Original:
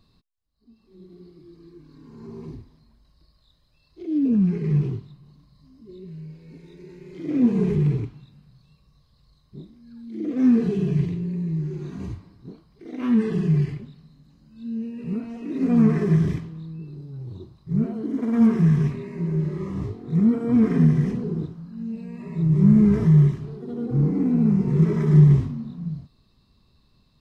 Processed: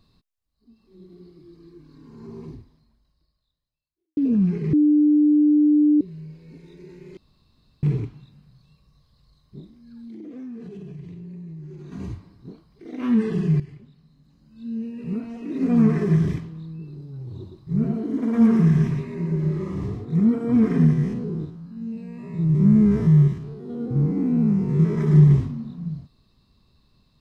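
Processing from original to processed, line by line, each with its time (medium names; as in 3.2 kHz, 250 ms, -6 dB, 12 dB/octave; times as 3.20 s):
2.39–4.17 s: fade out quadratic
4.73–6.01 s: bleep 298 Hz -13 dBFS
7.17–7.83 s: room tone
9.59–11.92 s: compression, threshold -36 dBFS
13.60–14.71 s: fade in, from -15 dB
17.22–20.05 s: delay 116 ms -4.5 dB
20.93–24.98 s: spectrogram pixelated in time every 50 ms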